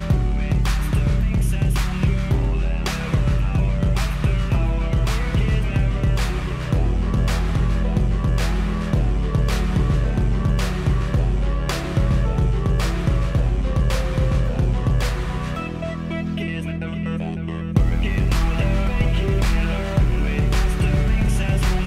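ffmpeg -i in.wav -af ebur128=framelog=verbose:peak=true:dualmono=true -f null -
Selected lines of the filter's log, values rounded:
Integrated loudness:
  I:         -18.8 LUFS
  Threshold: -28.8 LUFS
Loudness range:
  LRA:         2.6 LU
  Threshold: -38.9 LUFS
  LRA low:   -20.6 LUFS
  LRA high:  -18.0 LUFS
True peak:
  Peak:       -4.6 dBFS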